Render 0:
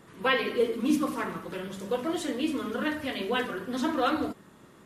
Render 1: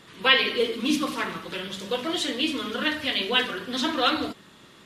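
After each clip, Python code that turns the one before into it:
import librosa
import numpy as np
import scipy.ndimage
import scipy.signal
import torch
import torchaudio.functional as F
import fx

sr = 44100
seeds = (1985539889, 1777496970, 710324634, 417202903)

y = fx.peak_eq(x, sr, hz=3600.0, db=14.0, octaves=1.7)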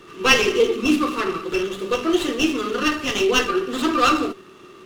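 y = fx.small_body(x, sr, hz=(380.0, 1200.0, 2700.0), ring_ms=45, db=17)
y = fx.running_max(y, sr, window=5)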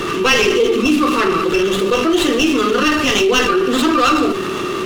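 y = fx.env_flatten(x, sr, amount_pct=70)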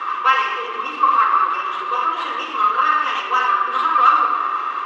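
y = fx.ladder_bandpass(x, sr, hz=1200.0, resonance_pct=70)
y = fx.room_shoebox(y, sr, seeds[0], volume_m3=3300.0, walls='mixed', distance_m=2.1)
y = y * librosa.db_to_amplitude(5.5)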